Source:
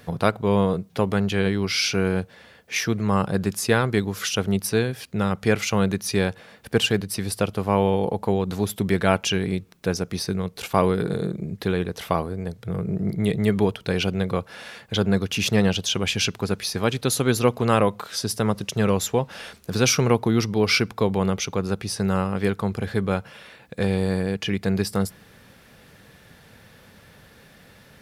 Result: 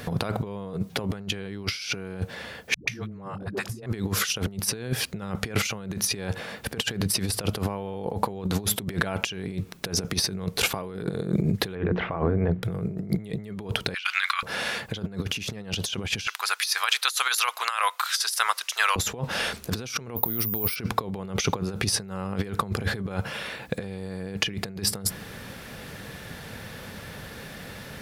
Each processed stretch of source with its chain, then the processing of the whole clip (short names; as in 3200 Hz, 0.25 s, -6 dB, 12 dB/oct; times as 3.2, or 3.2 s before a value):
2.74–3.86 high shelf 2900 Hz -8.5 dB + dispersion highs, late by 0.135 s, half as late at 310 Hz
11.75–12.63 LPF 2300 Hz 24 dB/oct + notches 60/120/180/240/300/360 Hz
13.94–14.43 steep high-pass 1200 Hz + bell 2300 Hz +13 dB 2.9 oct
16.27–18.96 HPF 1100 Hz 24 dB/oct + high shelf 11000 Hz +4 dB
20.16–20.76 careless resampling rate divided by 3×, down filtered, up zero stuff + expander -27 dBFS + compressor 2.5:1, threshold -22 dBFS
whole clip: limiter -13.5 dBFS; negative-ratio compressor -31 dBFS, ratio -0.5; gain +4 dB